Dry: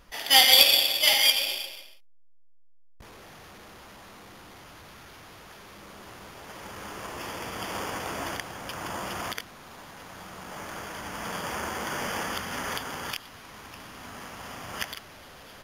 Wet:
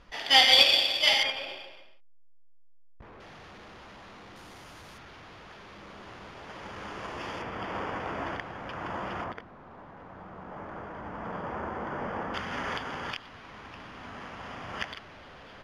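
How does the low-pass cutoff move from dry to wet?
4.4 kHz
from 1.23 s 1.8 kHz
from 3.20 s 4.3 kHz
from 4.36 s 9.8 kHz
from 4.98 s 4 kHz
from 7.42 s 2.2 kHz
from 9.24 s 1.2 kHz
from 12.34 s 3.2 kHz

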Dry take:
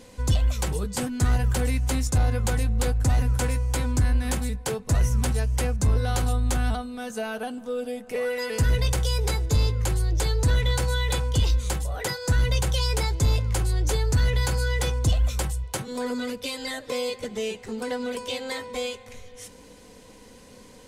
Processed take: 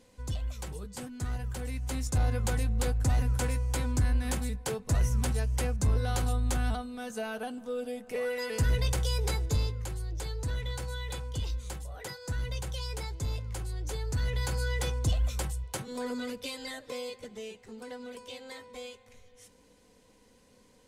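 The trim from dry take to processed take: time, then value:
1.61 s -12.5 dB
2.24 s -5 dB
9.45 s -5 dB
9.88 s -12 dB
13.83 s -12 dB
14.62 s -6 dB
16.40 s -6 dB
17.53 s -13 dB

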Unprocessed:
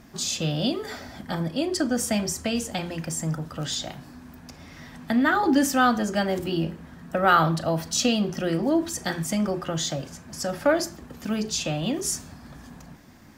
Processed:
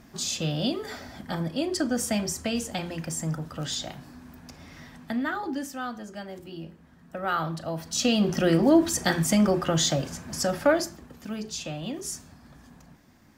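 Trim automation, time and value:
4.78 s -2 dB
5.74 s -14 dB
6.47 s -14 dB
7.81 s -6.5 dB
8.33 s +4 dB
10.34 s +4 dB
11.26 s -7 dB

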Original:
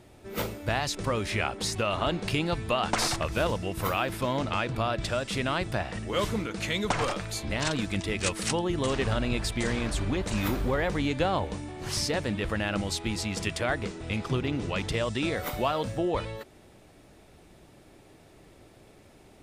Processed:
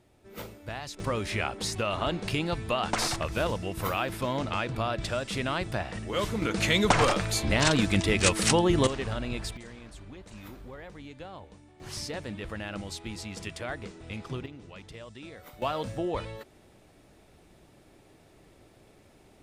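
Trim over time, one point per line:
-9.5 dB
from 1.00 s -1.5 dB
from 6.42 s +5.5 dB
from 8.87 s -5 dB
from 9.57 s -17 dB
from 11.80 s -7.5 dB
from 14.46 s -16 dB
from 15.62 s -3 dB

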